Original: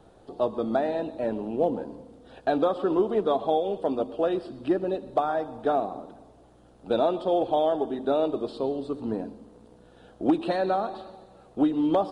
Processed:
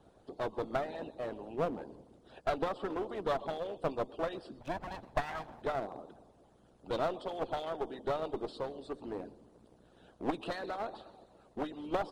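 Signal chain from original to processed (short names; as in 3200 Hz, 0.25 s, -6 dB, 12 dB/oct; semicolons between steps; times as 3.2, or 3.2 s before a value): 4.6–5.62 minimum comb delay 1.2 ms; harmonic-percussive split harmonic -18 dB; one-sided clip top -34 dBFS; gain -2.5 dB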